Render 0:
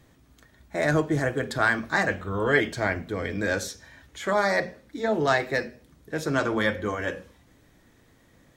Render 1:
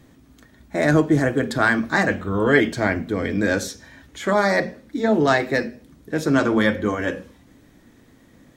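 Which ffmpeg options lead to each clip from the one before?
ffmpeg -i in.wav -af "equalizer=frequency=250:width_type=o:width=1:gain=7.5,volume=3.5dB" out.wav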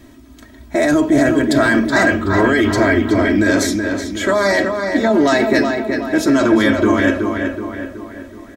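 ffmpeg -i in.wav -filter_complex "[0:a]aecho=1:1:3.1:0.78,acrossover=split=4600[link_01][link_02];[link_01]alimiter=limit=-13.5dB:level=0:latency=1:release=11[link_03];[link_03][link_02]amix=inputs=2:normalize=0,asplit=2[link_04][link_05];[link_05]adelay=374,lowpass=frequency=3400:poles=1,volume=-5dB,asplit=2[link_06][link_07];[link_07]adelay=374,lowpass=frequency=3400:poles=1,volume=0.5,asplit=2[link_08][link_09];[link_09]adelay=374,lowpass=frequency=3400:poles=1,volume=0.5,asplit=2[link_10][link_11];[link_11]adelay=374,lowpass=frequency=3400:poles=1,volume=0.5,asplit=2[link_12][link_13];[link_13]adelay=374,lowpass=frequency=3400:poles=1,volume=0.5,asplit=2[link_14][link_15];[link_15]adelay=374,lowpass=frequency=3400:poles=1,volume=0.5[link_16];[link_04][link_06][link_08][link_10][link_12][link_14][link_16]amix=inputs=7:normalize=0,volume=6.5dB" out.wav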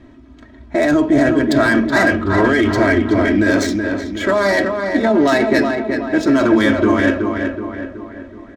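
ffmpeg -i in.wav -af "adynamicsmooth=sensitivity=1.5:basefreq=3100" out.wav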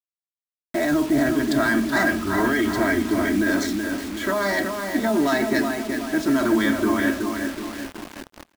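ffmpeg -i in.wav -af "equalizer=frequency=100:width_type=o:width=0.33:gain=-11,equalizer=frequency=500:width_type=o:width=0.33:gain=-12,equalizer=frequency=2500:width_type=o:width=0.33:gain=-4,acrusher=bits=4:mix=0:aa=0.000001,aecho=1:1:378:0.0668,volume=-5.5dB" out.wav

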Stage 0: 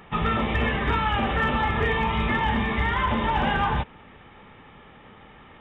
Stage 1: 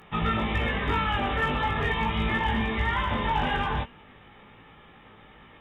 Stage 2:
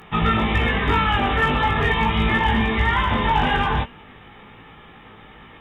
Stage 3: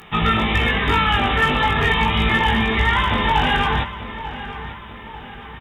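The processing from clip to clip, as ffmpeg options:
ffmpeg -i in.wav -af "aemphasis=mode=production:type=cd,bandreject=frequency=234.6:width_type=h:width=4,bandreject=frequency=469.2:width_type=h:width=4,bandreject=frequency=703.8:width_type=h:width=4,bandreject=frequency=938.4:width_type=h:width=4,bandreject=frequency=1173:width_type=h:width=4,bandreject=frequency=1407.6:width_type=h:width=4,bandreject=frequency=1642.2:width_type=h:width=4,bandreject=frequency=1876.8:width_type=h:width=4,bandreject=frequency=2111.4:width_type=h:width=4,bandreject=frequency=2346:width_type=h:width=4,bandreject=frequency=2580.6:width_type=h:width=4,bandreject=frequency=2815.2:width_type=h:width=4,bandreject=frequency=3049.8:width_type=h:width=4,bandreject=frequency=3284.4:width_type=h:width=4,bandreject=frequency=3519:width_type=h:width=4,bandreject=frequency=3753.6:width_type=h:width=4,bandreject=frequency=3988.2:width_type=h:width=4,bandreject=frequency=4222.8:width_type=h:width=4,bandreject=frequency=4457.4:width_type=h:width=4,bandreject=frequency=4692:width_type=h:width=4,bandreject=frequency=4926.6:width_type=h:width=4,bandreject=frequency=5161.2:width_type=h:width=4,bandreject=frequency=5395.8:width_type=h:width=4,bandreject=frequency=5630.4:width_type=h:width=4,bandreject=frequency=5865:width_type=h:width=4,bandreject=frequency=6099.6:width_type=h:width=4,bandreject=frequency=6334.2:width_type=h:width=4,bandreject=frequency=6568.8:width_type=h:width=4,bandreject=frequency=6803.4:width_type=h:width=4,bandreject=frequency=7038:width_type=h:width=4,bandreject=frequency=7272.6:width_type=h:width=4,flanger=delay=18:depth=2.3:speed=0.4" out.wav
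ffmpeg -i in.wav -af "bandreject=frequency=570:width=12,volume=7dB" out.wav
ffmpeg -i in.wav -filter_complex "[0:a]highshelf=frequency=2700:gain=8.5,asplit=2[link_01][link_02];[link_02]adelay=893,lowpass=frequency=3300:poles=1,volume=-13dB,asplit=2[link_03][link_04];[link_04]adelay=893,lowpass=frequency=3300:poles=1,volume=0.51,asplit=2[link_05][link_06];[link_06]adelay=893,lowpass=frequency=3300:poles=1,volume=0.51,asplit=2[link_07][link_08];[link_08]adelay=893,lowpass=frequency=3300:poles=1,volume=0.51,asplit=2[link_09][link_10];[link_10]adelay=893,lowpass=frequency=3300:poles=1,volume=0.51[link_11];[link_01][link_03][link_05][link_07][link_09][link_11]amix=inputs=6:normalize=0" out.wav

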